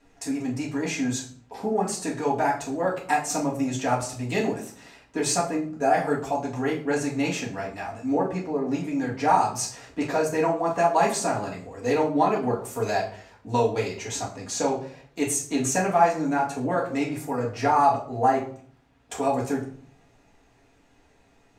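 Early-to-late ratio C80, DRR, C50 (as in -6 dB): 13.5 dB, -6.0 dB, 9.0 dB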